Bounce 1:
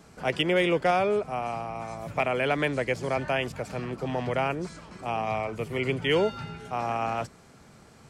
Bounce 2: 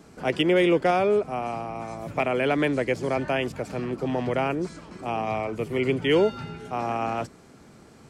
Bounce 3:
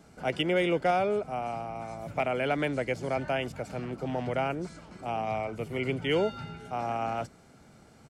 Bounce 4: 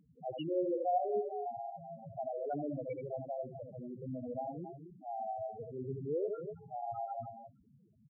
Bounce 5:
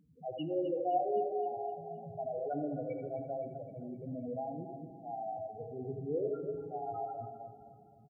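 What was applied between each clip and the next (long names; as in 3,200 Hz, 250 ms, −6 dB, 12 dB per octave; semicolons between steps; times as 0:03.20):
parametric band 310 Hz +7 dB 1.1 octaves
comb filter 1.4 ms, depth 32%; level −5 dB
multi-tap delay 77/222/253 ms −5/−14/−10 dB; convolution reverb RT60 0.50 s, pre-delay 3 ms, DRR 17 dB; spectral peaks only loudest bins 4; level −7 dB
repeating echo 260 ms, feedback 54%, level −13 dB; feedback delay network reverb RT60 1.6 s, low-frequency decay 1.5×, high-frequency decay 0.45×, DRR 10 dB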